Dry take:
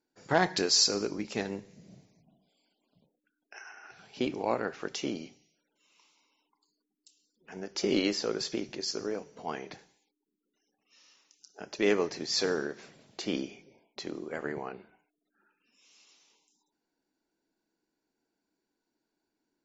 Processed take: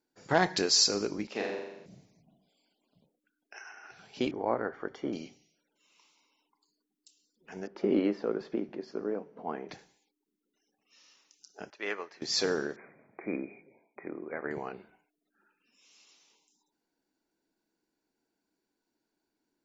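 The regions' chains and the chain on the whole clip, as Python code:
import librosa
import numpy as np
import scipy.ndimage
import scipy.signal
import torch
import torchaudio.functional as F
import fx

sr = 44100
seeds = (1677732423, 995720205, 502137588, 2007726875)

y = fx.chain(x, sr, fx.highpass(hz=310.0, slope=12),
    fx.air_absorb(metres=160.0),
    fx.room_flutter(wall_m=7.3, rt60_s=0.94), at=(1.27, 1.86))
y = fx.chain(y, sr, fx.savgol(points=41),
    fx.peak_eq(hz=170.0, db=-6.5, octaves=0.39), at=(4.31, 5.13))
y = fx.chain(y, sr, fx.lowpass(hz=1400.0, slope=12),
    fx.low_shelf_res(hz=150.0, db=-8.0, q=1.5), at=(7.67, 9.69))
y = fx.chain(y, sr, fx.bandpass_q(hz=1500.0, q=1.1),
    fx.upward_expand(threshold_db=-44.0, expansion=1.5), at=(11.7, 12.22))
y = fx.chain(y, sr, fx.brickwall_lowpass(high_hz=2500.0),
    fx.low_shelf(hz=130.0, db=-12.0), at=(12.76, 14.51))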